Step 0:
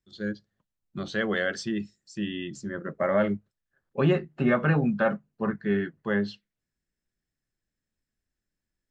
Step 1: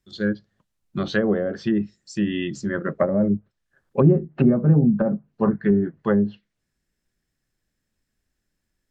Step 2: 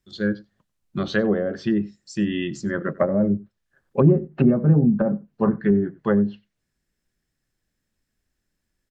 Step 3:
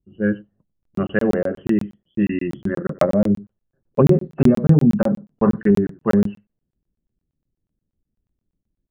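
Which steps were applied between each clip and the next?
treble cut that deepens with the level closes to 350 Hz, closed at −21.5 dBFS; level +8.5 dB
slap from a distant wall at 16 metres, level −22 dB
hearing-aid frequency compression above 2,600 Hz 4 to 1; low-pass that shuts in the quiet parts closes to 340 Hz, open at −13 dBFS; regular buffer underruns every 0.12 s, samples 1,024, zero, from 0:00.83; level +3.5 dB

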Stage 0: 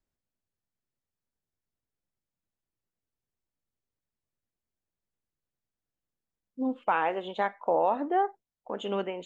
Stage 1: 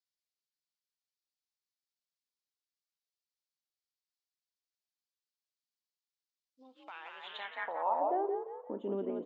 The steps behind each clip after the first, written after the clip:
echo with shifted repeats 175 ms, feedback 46%, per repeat +46 Hz, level −4.5 dB
downward compressor 3 to 1, threshold −27 dBFS, peak gain reduction 6.5 dB
band-pass filter sweep 4,600 Hz → 290 Hz, 0:07.24–0:08.43
level +3 dB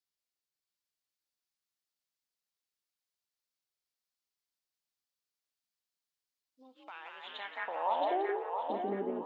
feedback echo with a high-pass in the loop 674 ms, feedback 37%, high-pass 620 Hz, level −3 dB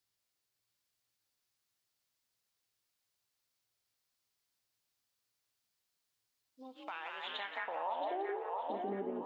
downward compressor 3 to 1, threshold −46 dBFS, peak gain reduction 14 dB
parametric band 110 Hz +12.5 dB 0.21 octaves
convolution reverb RT60 0.70 s, pre-delay 8 ms, DRR 15 dB
level +6.5 dB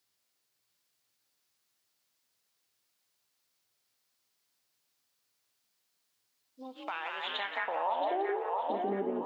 high-pass filter 140 Hz
level +6 dB

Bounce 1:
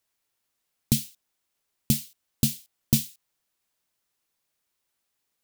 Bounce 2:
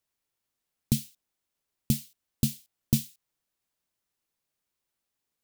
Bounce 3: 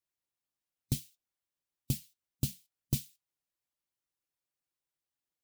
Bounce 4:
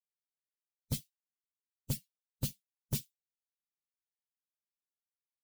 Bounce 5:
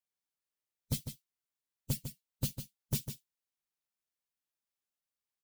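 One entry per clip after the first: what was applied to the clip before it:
low-shelf EQ 480 Hz +5 dB; level −6 dB
harmonic and percussive parts rebalanced harmonic −9 dB; flanger 1.7 Hz, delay 5.8 ms, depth 3.4 ms, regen −71%; notch comb filter 220 Hz
spectral dynamics exaggerated over time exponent 2; soft clipping −33.5 dBFS, distortion −7 dB; on a send at −21 dB: convolution reverb, pre-delay 5 ms; on the sum: level +6.5 dB
single-tap delay 151 ms −9 dB; level +1 dB

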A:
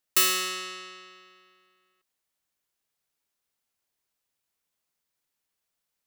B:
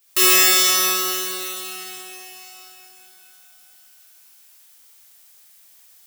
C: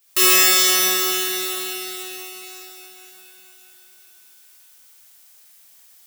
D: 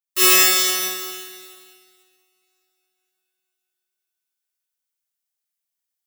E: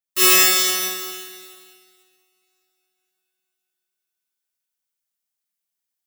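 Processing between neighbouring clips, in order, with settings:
background noise blue −63 dBFS; reverb with rising layers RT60 3.6 s, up +12 semitones, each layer −8 dB, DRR −11.5 dB
feedback delay with all-pass diffusion 469 ms, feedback 45%, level −10.5 dB
expander for the loud parts 2.5 to 1, over −35 dBFS; level +1 dB
parametric band 210 Hz +8 dB 0.23 octaves

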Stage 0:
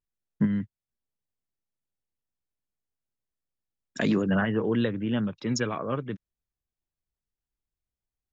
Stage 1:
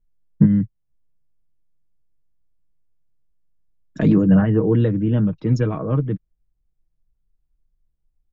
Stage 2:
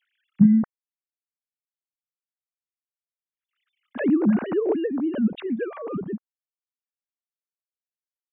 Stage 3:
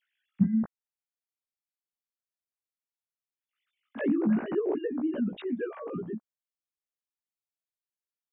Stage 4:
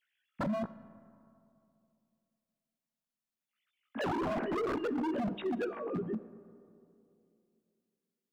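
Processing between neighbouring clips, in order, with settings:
spectral tilt −4.5 dB per octave; comb filter 6.4 ms, depth 49%
three sine waves on the formant tracks; background raised ahead of every attack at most 120 dB per second; level −5 dB
chorus effect 0.38 Hz, delay 16 ms, depth 2 ms; level −2.5 dB
wave folding −28 dBFS; convolution reverb RT60 2.7 s, pre-delay 5 ms, DRR 15.5 dB

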